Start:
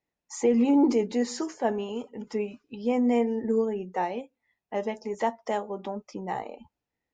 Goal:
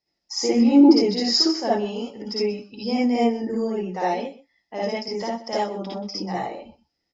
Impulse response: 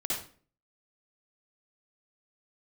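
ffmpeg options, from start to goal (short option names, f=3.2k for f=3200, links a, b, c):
-filter_complex "[0:a]asettb=1/sr,asplit=3[a][b][c];[a]atrim=end=0.414[d];[b]atrim=start=0.41:end=1.11,asetpts=PTS-STARTPTS,afade=t=in:d=0.004:c=qsin,afade=t=out:st=0.696:d=0.004:c=qsin,highshelf=f=3.9k:g=-6[e];[c]atrim=start=1.106[f];[d][e]acrossfade=d=0.004:c1=hsin:c2=qsin[g];[g][f]acrossfade=d=0.004:c1=qsin:c2=hsin[h];[1:a]atrim=start_sample=2205,atrim=end_sample=3969[i];[h][i]afir=irnorm=-1:irlink=0,asettb=1/sr,asplit=3[j][k][l];[j]atrim=end=5.084[m];[k]atrim=start=5.08:end=5.53,asetpts=PTS-STARTPTS,afade=t=in:d=0.004:c=qsin,afade=t=out:st=0.446:d=0.004:c=qsin,acrossover=split=300[n][o];[o]acompressor=threshold=-29dB:ratio=3[p];[n][p]amix=inputs=2:normalize=0[q];[l]atrim=start=5.526[r];[m][q]acrossfade=d=0.004:c1=hsin:c2=qsin[s];[s][r]acrossfade=d=0.004:c1=qsin:c2=hsin,lowpass=f=5.1k:t=q:w=14,aecho=1:1:125:0.141"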